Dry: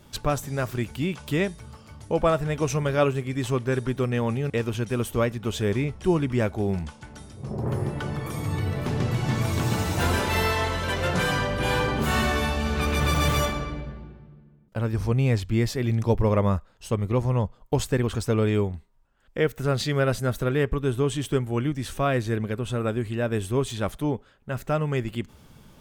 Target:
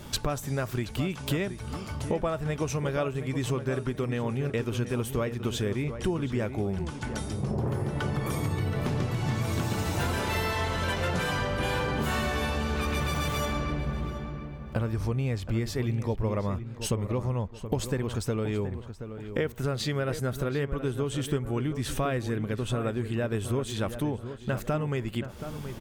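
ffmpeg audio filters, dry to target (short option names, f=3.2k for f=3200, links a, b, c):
-filter_complex "[0:a]acompressor=threshold=-36dB:ratio=6,asplit=2[a][b];[b]adelay=726,lowpass=f=2.2k:p=1,volume=-10dB,asplit=2[c][d];[d]adelay=726,lowpass=f=2.2k:p=1,volume=0.39,asplit=2[e][f];[f]adelay=726,lowpass=f=2.2k:p=1,volume=0.39,asplit=2[g][h];[h]adelay=726,lowpass=f=2.2k:p=1,volume=0.39[i];[a][c][e][g][i]amix=inputs=5:normalize=0,volume=9dB"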